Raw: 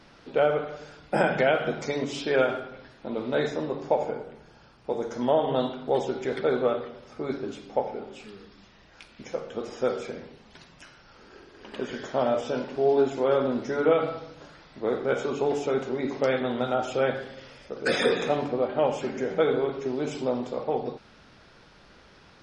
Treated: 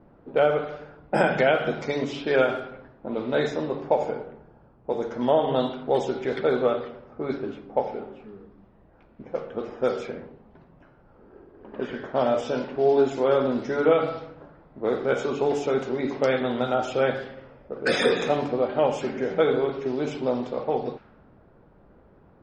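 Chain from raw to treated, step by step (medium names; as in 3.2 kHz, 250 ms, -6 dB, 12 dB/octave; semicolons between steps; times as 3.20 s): level-controlled noise filter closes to 650 Hz, open at -22 dBFS; trim +2 dB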